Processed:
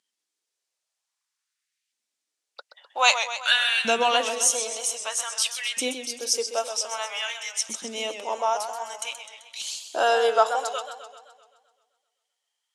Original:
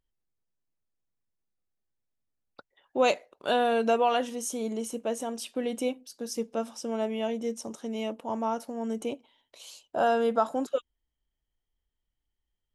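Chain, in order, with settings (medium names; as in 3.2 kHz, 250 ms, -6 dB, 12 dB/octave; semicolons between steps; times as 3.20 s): LFO high-pass saw up 0.52 Hz 200–2600 Hz; frequency weighting ITU-R 468; modulated delay 129 ms, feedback 58%, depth 120 cents, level -9.5 dB; trim +3 dB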